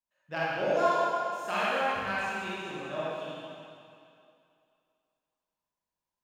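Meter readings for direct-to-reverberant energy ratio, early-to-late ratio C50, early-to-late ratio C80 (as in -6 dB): -9.0 dB, -6.0 dB, -2.5 dB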